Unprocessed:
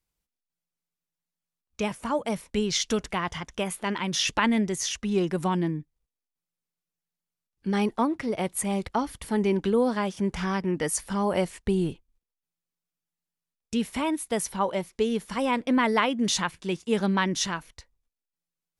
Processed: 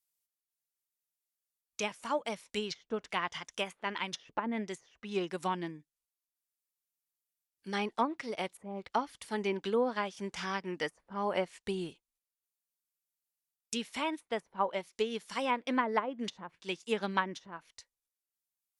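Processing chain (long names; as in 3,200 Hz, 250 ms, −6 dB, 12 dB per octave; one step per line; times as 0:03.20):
RIAA equalisation recording
treble cut that deepens with the level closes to 660 Hz, closed at −18.5 dBFS
expander for the loud parts 1.5 to 1, over −40 dBFS
level −2 dB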